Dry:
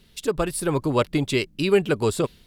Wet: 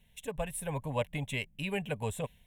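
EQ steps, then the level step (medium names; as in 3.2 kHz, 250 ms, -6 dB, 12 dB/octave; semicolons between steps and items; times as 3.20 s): static phaser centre 1.3 kHz, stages 6; -7.0 dB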